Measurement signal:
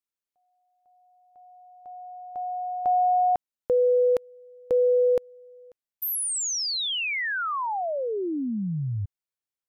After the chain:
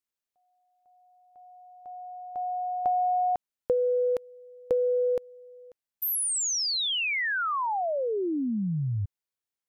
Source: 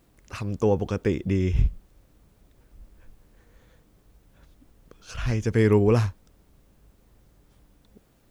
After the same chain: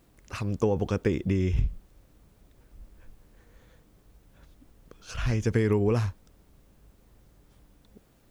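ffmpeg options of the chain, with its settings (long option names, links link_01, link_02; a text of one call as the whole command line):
ffmpeg -i in.wav -af "acompressor=threshold=-29dB:ratio=4:attack=96:release=43:knee=1:detection=peak" out.wav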